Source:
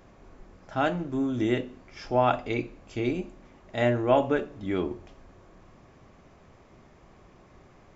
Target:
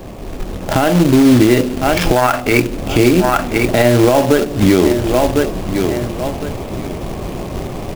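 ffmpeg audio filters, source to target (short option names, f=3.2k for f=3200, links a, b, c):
-filter_complex "[0:a]highshelf=f=3.8k:t=q:w=1.5:g=-10.5,acrossover=split=160|1000|2800[a][b][c][d];[c]acrusher=bits=4:dc=4:mix=0:aa=0.000001[e];[a][b][e][d]amix=inputs=4:normalize=0,asettb=1/sr,asplit=3[f][g][h];[f]atrim=end=2.164[i];[g]atrim=start=2.16:end=2.6,asetpts=PTS-STARTPTS,afade=t=in:d=0.004:c=qsin,afade=t=out:st=0.436:d=0.004:c=qsin,equalizer=f=1.5k:w=1.3:g=13.5[j];[h]atrim=start=2.596[k];[i][j]acrossfade=d=0.004:c1=hsin:c2=qsin[l];[l][k]acrossfade=d=0.004:c1=qsin:c2=hsin,aecho=1:1:1054|2108:0.1|0.025,acompressor=threshold=-37dB:ratio=6,acrusher=bits=3:mode=log:mix=0:aa=0.000001,dynaudnorm=f=110:g=11:m=7.5dB,alimiter=level_in=24.5dB:limit=-1dB:release=50:level=0:latency=1,volume=-1dB"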